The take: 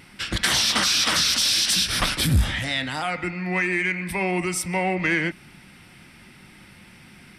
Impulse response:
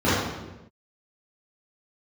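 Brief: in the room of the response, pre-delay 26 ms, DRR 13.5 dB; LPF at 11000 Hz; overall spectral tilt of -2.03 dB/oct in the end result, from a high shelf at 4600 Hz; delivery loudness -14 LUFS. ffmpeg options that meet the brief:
-filter_complex "[0:a]lowpass=11k,highshelf=f=4.6k:g=6,asplit=2[a][b];[1:a]atrim=start_sample=2205,adelay=26[c];[b][c]afir=irnorm=-1:irlink=0,volume=-34dB[d];[a][d]amix=inputs=2:normalize=0,volume=5dB"

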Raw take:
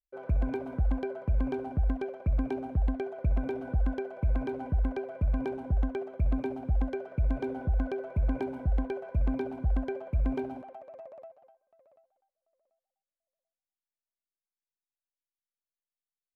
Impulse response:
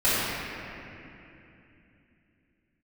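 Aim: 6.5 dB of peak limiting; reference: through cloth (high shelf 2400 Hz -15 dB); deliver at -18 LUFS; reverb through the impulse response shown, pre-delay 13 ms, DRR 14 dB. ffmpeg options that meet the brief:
-filter_complex "[0:a]alimiter=limit=-24dB:level=0:latency=1,asplit=2[a][b];[1:a]atrim=start_sample=2205,adelay=13[c];[b][c]afir=irnorm=-1:irlink=0,volume=-32dB[d];[a][d]amix=inputs=2:normalize=0,highshelf=f=2.4k:g=-15,volume=16dB"

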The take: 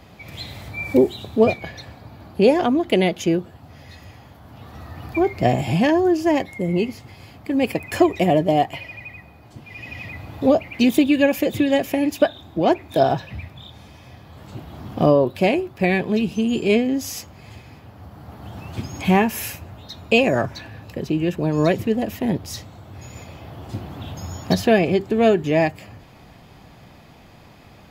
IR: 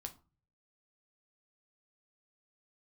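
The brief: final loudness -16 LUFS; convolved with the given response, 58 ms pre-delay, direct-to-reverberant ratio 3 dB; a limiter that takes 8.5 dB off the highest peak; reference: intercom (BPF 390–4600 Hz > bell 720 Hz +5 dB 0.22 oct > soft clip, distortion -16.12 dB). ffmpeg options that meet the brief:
-filter_complex "[0:a]alimiter=limit=-11dB:level=0:latency=1,asplit=2[a][b];[1:a]atrim=start_sample=2205,adelay=58[c];[b][c]afir=irnorm=-1:irlink=0,volume=0.5dB[d];[a][d]amix=inputs=2:normalize=0,highpass=390,lowpass=4.6k,equalizer=f=720:t=o:w=0.22:g=5,asoftclip=threshold=-15dB,volume=9.5dB"

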